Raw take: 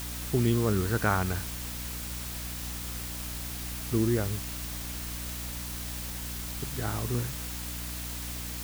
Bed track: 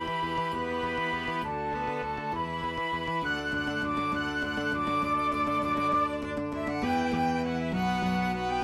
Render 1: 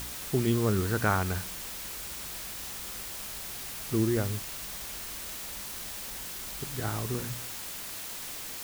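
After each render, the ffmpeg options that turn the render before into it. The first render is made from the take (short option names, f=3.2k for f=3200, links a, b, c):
-af "bandreject=f=60:t=h:w=4,bandreject=f=120:t=h:w=4,bandreject=f=180:t=h:w=4,bandreject=f=240:t=h:w=4,bandreject=f=300:t=h:w=4"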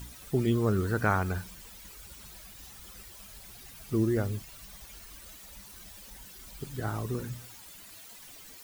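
-af "afftdn=nr=13:nf=-40"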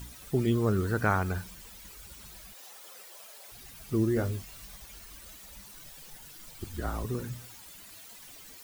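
-filter_complex "[0:a]asettb=1/sr,asplit=3[a][b][c];[a]atrim=end=2.534[d];[b]atrim=start=2.53:end=3.52,asetpts=PTS-STARTPTS,afade=t=in:d=0.004:c=qsin,afade=t=out:st=0.986:d=0.004:c=qsin,highpass=f=540:t=q:w=2.1[e];[c]atrim=start=3.516[f];[d][e]acrossfade=d=0.004:c1=hsin:c2=qsin[g];[g][f]acrossfade=d=0.004:c1=qsin:c2=hsin,asettb=1/sr,asplit=3[h][i][j];[h]atrim=end=4.144[k];[i]atrim=start=4.14:end=4.76,asetpts=PTS-STARTPTS,afade=t=in:d=0.004:c=qsin,afade=t=out:st=0.616:d=0.004:c=qsin,asplit=2[l][m];[m]adelay=22,volume=-6.5dB[n];[l][n]amix=inputs=2:normalize=0,atrim=end_sample=27342[o];[j]atrim=start=4.756[p];[k][o]acrossfade=d=0.004:c1=hsin:c2=qsin[q];[q][p]acrossfade=d=0.004:c1=qsin:c2=hsin,asettb=1/sr,asplit=3[r][s][t];[r]atrim=end=5.714[u];[s]atrim=start=5.71:end=7.05,asetpts=PTS-STARTPTS,afade=t=in:d=0.004:c=qsin,afade=t=out:st=1.336:d=0.004:c=qsin,afreqshift=-47[v];[t]atrim=start=7.046[w];[u][v]acrossfade=d=0.004:c1=hsin:c2=qsin[x];[x][w]acrossfade=d=0.004:c1=qsin:c2=hsin"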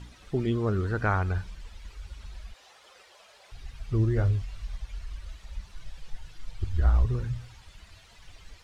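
-af "lowpass=4.3k,asubboost=boost=11:cutoff=74"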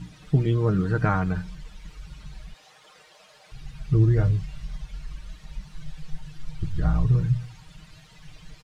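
-af "equalizer=f=160:t=o:w=0.74:g=14.5,aecho=1:1:6.5:0.65"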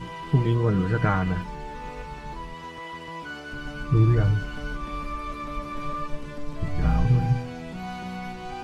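-filter_complex "[1:a]volume=-6.5dB[a];[0:a][a]amix=inputs=2:normalize=0"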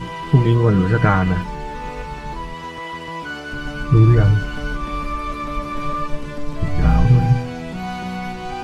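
-af "volume=7.5dB,alimiter=limit=-2dB:level=0:latency=1"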